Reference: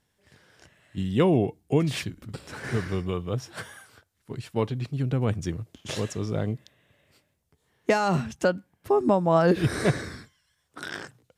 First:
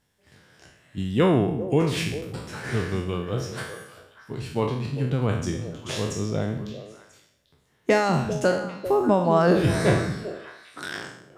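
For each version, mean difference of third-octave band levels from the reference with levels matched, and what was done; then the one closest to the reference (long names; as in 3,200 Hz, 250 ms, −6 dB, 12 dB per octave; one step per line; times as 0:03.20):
5.0 dB: peak hold with a decay on every bin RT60 0.65 s
echo through a band-pass that steps 198 ms, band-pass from 180 Hz, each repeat 1.4 octaves, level −6.5 dB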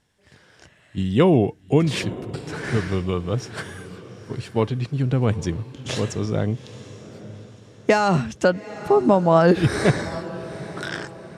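3.0 dB: low-pass filter 9,400 Hz 12 dB per octave
on a send: feedback delay with all-pass diffusion 839 ms, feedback 43%, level −15.5 dB
on the sum: level +5 dB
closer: second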